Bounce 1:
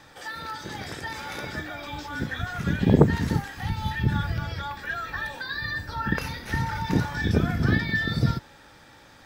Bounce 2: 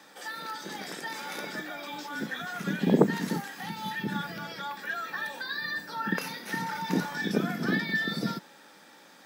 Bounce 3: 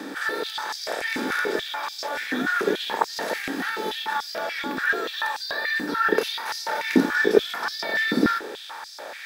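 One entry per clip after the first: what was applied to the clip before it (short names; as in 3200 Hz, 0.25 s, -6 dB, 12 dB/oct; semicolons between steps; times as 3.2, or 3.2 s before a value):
Chebyshev high-pass 180 Hz, order 4; high shelf 7100 Hz +7.5 dB; gain -2 dB
per-bin compression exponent 0.6; stepped high-pass 6.9 Hz 270–5000 Hz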